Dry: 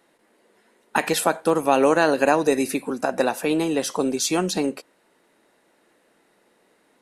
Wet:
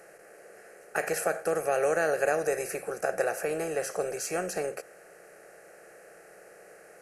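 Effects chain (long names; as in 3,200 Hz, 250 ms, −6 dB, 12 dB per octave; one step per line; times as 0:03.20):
compressor on every frequency bin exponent 0.6
phaser with its sweep stopped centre 970 Hz, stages 6
level −8.5 dB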